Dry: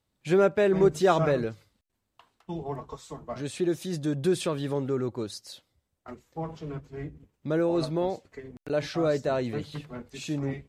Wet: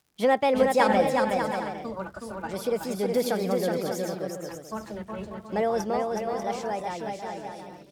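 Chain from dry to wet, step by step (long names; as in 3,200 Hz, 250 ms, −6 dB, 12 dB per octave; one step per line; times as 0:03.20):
fade-out on the ending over 3.03 s
surface crackle 82 per second −49 dBFS
change of speed 1.35×
on a send: bouncing-ball delay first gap 370 ms, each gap 0.6×, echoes 5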